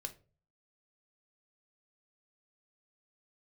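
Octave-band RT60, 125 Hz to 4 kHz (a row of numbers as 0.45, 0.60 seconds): 0.65, 0.45, 0.45, 0.30, 0.25, 0.25 seconds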